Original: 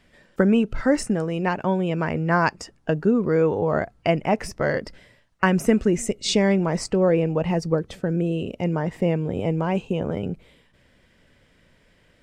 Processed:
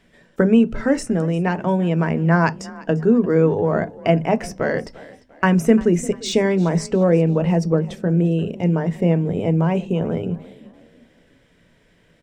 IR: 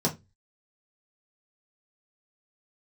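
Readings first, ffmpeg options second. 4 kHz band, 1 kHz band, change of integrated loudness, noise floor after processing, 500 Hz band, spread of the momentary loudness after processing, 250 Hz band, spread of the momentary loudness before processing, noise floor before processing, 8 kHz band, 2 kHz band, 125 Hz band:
-1.0 dB, +1.0 dB, +3.5 dB, -57 dBFS, +3.0 dB, 7 LU, +4.5 dB, 7 LU, -60 dBFS, -0.5 dB, +1.0 dB, +6.0 dB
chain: -filter_complex "[0:a]asplit=2[a][b];[1:a]atrim=start_sample=2205[c];[b][c]afir=irnorm=-1:irlink=0,volume=-19.5dB[d];[a][d]amix=inputs=2:normalize=0,deesser=0.5,asplit=2[e][f];[f]asplit=3[g][h][i];[g]adelay=347,afreqshift=31,volume=-20dB[j];[h]adelay=694,afreqshift=62,volume=-28.4dB[k];[i]adelay=1041,afreqshift=93,volume=-36.8dB[l];[j][k][l]amix=inputs=3:normalize=0[m];[e][m]amix=inputs=2:normalize=0"

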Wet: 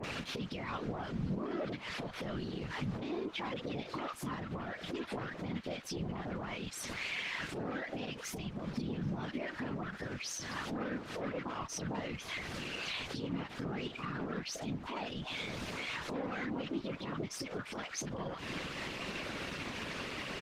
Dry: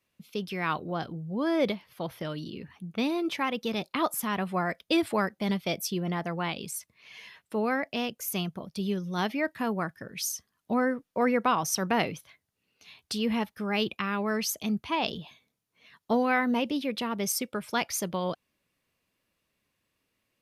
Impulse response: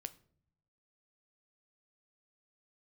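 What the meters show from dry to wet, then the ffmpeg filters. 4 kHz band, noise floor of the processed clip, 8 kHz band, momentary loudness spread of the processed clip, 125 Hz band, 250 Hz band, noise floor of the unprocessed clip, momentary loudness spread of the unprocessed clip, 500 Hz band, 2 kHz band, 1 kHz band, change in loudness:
-6.0 dB, -48 dBFS, -10.0 dB, 3 LU, -3.5 dB, -9.5 dB, -80 dBFS, 10 LU, -10.0 dB, -6.5 dB, -11.5 dB, -9.5 dB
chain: -filter_complex "[0:a]aeval=exprs='val(0)+0.5*0.0119*sgn(val(0))':c=same,acontrast=60,acrusher=bits=7:mix=0:aa=0.000001,volume=19dB,asoftclip=hard,volume=-19dB,lowpass=3.8k,acrossover=split=1100[a][b];[b]adelay=40[c];[a][c]amix=inputs=2:normalize=0,acompressor=threshold=-35dB:ratio=10,highpass=f=110:w=0.5412,highpass=f=110:w=1.3066,alimiter=level_in=10dB:limit=-24dB:level=0:latency=1:release=113,volume=-10dB,adynamicequalizer=threshold=0.00112:dfrequency=1300:dqfactor=2.5:tfrequency=1300:tqfactor=2.5:attack=5:release=100:ratio=0.375:range=2:mode=boostabove:tftype=bell,afftfilt=real='hypot(re,im)*cos(2*PI*random(0))':imag='hypot(re,im)*sin(2*PI*random(1))':win_size=512:overlap=0.75,volume=9.5dB" -ar 48000 -c:a libopus -b:a 16k

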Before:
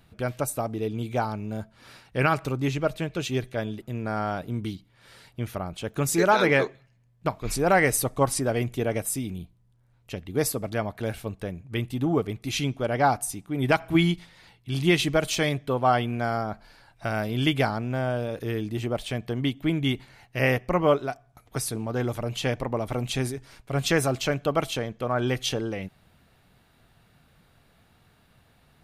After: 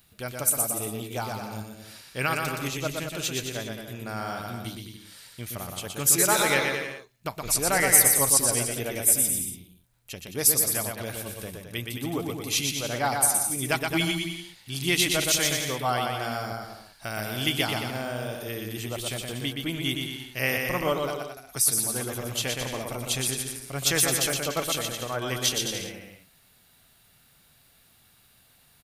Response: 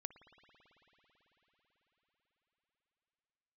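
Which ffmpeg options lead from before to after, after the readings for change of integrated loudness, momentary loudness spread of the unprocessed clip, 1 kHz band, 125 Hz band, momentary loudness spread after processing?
+1.5 dB, 12 LU, -3.5 dB, -6.0 dB, 17 LU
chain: -af "aeval=exprs='0.398*(cos(1*acos(clip(val(0)/0.398,-1,1)))-cos(1*PI/2))+0.00316*(cos(4*acos(clip(val(0)/0.398,-1,1)))-cos(4*PI/2))':c=same,aecho=1:1:120|216|292.8|354.2|403.4:0.631|0.398|0.251|0.158|0.1,crystalizer=i=6:c=0,volume=-8dB"

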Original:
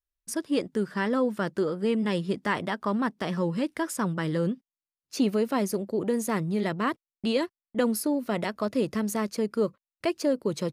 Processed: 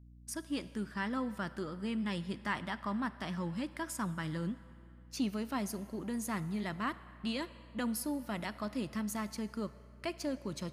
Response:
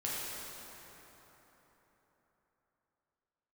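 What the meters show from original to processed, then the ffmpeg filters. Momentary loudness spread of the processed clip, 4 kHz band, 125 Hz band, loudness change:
6 LU, -6.5 dB, -8.0 dB, -10.0 dB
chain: -filter_complex "[0:a]aeval=exprs='val(0)+0.00447*(sin(2*PI*60*n/s)+sin(2*PI*2*60*n/s)/2+sin(2*PI*3*60*n/s)/3+sin(2*PI*4*60*n/s)/4+sin(2*PI*5*60*n/s)/5)':c=same,equalizer=f=460:t=o:w=0.73:g=-12,asplit=2[a][b];[1:a]atrim=start_sample=2205,asetrate=70560,aresample=44100,lowshelf=f=230:g=-10[c];[b][c]afir=irnorm=-1:irlink=0,volume=-13dB[d];[a][d]amix=inputs=2:normalize=0,volume=-7.5dB"

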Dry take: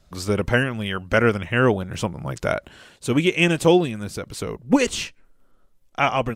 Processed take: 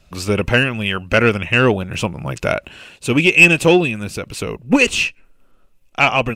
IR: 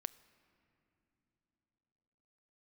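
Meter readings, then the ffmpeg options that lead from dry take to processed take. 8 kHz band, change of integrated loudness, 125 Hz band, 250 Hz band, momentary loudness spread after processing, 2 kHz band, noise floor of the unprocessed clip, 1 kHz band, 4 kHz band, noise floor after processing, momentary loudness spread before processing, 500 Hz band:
+5.0 dB, +6.5 dB, +4.0 dB, +3.5 dB, 17 LU, +9.5 dB, -58 dBFS, +3.5 dB, +7.0 dB, -53 dBFS, 13 LU, +3.5 dB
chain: -af "equalizer=f=2.6k:w=5.7:g=14,acontrast=32,volume=-1dB"

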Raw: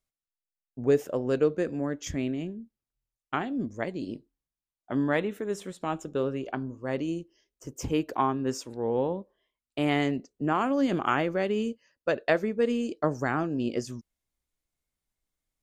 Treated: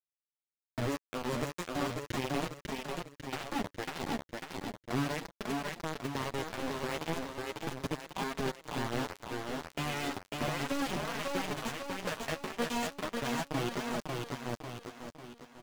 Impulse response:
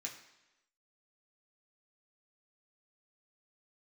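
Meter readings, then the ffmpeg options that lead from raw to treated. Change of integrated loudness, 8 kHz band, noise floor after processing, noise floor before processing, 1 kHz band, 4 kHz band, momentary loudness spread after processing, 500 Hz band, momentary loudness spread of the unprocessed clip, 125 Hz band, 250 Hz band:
-7.5 dB, +1.5 dB, under -85 dBFS, under -85 dBFS, -4.5 dB, +2.5 dB, 7 LU, -9.5 dB, 11 LU, -4.0 dB, -8.0 dB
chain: -filter_complex "[0:a]bandreject=f=1.3k:w=11,aecho=1:1:4.8:0.37,asplit=2[a][b];[b]acompressor=threshold=-35dB:ratio=10,volume=0.5dB[c];[a][c]amix=inputs=2:normalize=0,equalizer=f=93:t=o:w=0.52:g=9.5,acrossover=split=120|4100[d][e][f];[d]acompressor=threshold=-41dB:ratio=4[g];[e]acompressor=threshold=-38dB:ratio=4[h];[f]acompressor=threshold=-51dB:ratio=4[i];[g][h][i]amix=inputs=3:normalize=0,asplit=2[j][k];[1:a]atrim=start_sample=2205,lowshelf=f=270:g=10.5[l];[k][l]afir=irnorm=-1:irlink=0,volume=-10dB[m];[j][m]amix=inputs=2:normalize=0,acrusher=bits=4:mix=0:aa=0.000001,aecho=1:1:547|1094|1641|2188|2735:0.501|0.221|0.097|0.0427|0.0188,asoftclip=type=tanh:threshold=-28dB,highshelf=f=7.1k:g=-8.5,flanger=delay=4.2:depth=9.2:regen=-3:speed=0.36:shape=triangular,volume=6.5dB"

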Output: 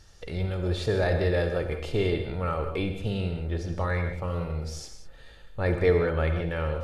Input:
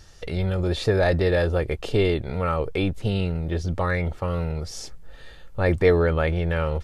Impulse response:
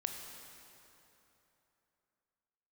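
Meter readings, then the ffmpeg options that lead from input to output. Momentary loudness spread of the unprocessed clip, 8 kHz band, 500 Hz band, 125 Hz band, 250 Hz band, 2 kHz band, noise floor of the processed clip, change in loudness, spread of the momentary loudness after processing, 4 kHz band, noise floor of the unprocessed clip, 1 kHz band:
9 LU, -4.5 dB, -4.0 dB, -4.0 dB, -5.0 dB, -4.5 dB, -49 dBFS, -4.5 dB, 9 LU, -4.5 dB, -44 dBFS, -4.5 dB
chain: -filter_complex "[1:a]atrim=start_sample=2205,afade=t=out:st=0.17:d=0.01,atrim=end_sample=7938,asetrate=26460,aresample=44100[a];[0:a][a]afir=irnorm=-1:irlink=0,volume=-7dB"

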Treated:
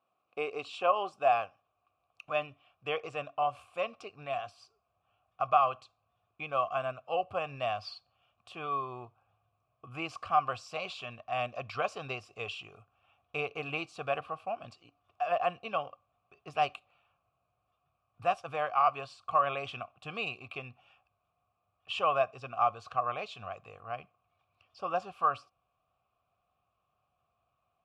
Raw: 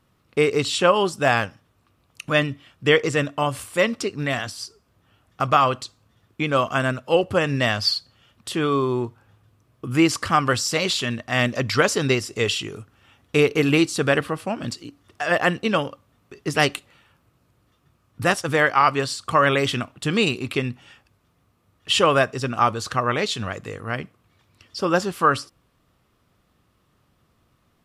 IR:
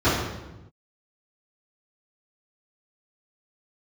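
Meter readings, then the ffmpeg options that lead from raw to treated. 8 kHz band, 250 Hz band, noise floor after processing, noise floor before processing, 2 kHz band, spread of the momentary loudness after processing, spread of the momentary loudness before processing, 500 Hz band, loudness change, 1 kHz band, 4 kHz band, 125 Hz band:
under -25 dB, -25.0 dB, -80 dBFS, -65 dBFS, -16.5 dB, 15 LU, 13 LU, -12.5 dB, -12.0 dB, -7.0 dB, -18.0 dB, -21.5 dB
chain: -filter_complex "[0:a]asubboost=boost=10:cutoff=92,asplit=3[a][b][c];[a]bandpass=f=730:t=q:w=8,volume=0dB[d];[b]bandpass=f=1.09k:t=q:w=8,volume=-6dB[e];[c]bandpass=f=2.44k:t=q:w=8,volume=-9dB[f];[d][e][f]amix=inputs=3:normalize=0"

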